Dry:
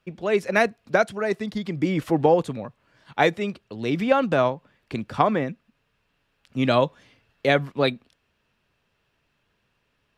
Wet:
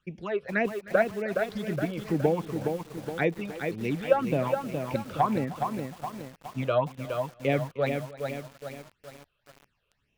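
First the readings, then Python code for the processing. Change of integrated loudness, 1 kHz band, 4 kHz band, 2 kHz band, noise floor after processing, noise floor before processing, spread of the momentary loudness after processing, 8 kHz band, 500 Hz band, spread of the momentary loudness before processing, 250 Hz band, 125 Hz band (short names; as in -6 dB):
-6.0 dB, -5.5 dB, -10.5 dB, -6.5 dB, -76 dBFS, -72 dBFS, 13 LU, n/a, -4.5 dB, 14 LU, -5.0 dB, -2.5 dB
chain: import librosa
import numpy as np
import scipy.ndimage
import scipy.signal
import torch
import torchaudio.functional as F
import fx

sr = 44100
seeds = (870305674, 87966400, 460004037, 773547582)

p1 = fx.env_lowpass_down(x, sr, base_hz=2000.0, full_db=-18.5)
p2 = fx.phaser_stages(p1, sr, stages=8, low_hz=240.0, high_hz=1400.0, hz=1.9, feedback_pct=30)
p3 = p2 + fx.echo_feedback(p2, sr, ms=308, feedback_pct=23, wet_db=-19.0, dry=0)
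p4 = fx.echo_crushed(p3, sr, ms=417, feedback_pct=55, bits=7, wet_db=-5)
y = F.gain(torch.from_numpy(p4), -3.0).numpy()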